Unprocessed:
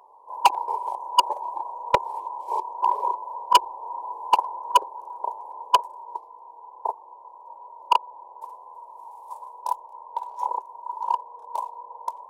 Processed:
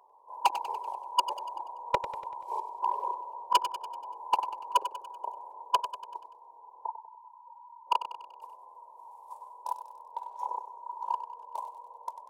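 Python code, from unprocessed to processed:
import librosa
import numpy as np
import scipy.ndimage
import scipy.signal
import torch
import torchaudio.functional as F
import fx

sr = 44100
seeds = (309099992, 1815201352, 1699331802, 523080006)

y = fx.spec_topn(x, sr, count=8, at=(6.85, 7.86), fade=0.02)
y = fx.echo_feedback(y, sr, ms=96, feedback_pct=53, wet_db=-11)
y = y * librosa.db_to_amplitude(-8.0)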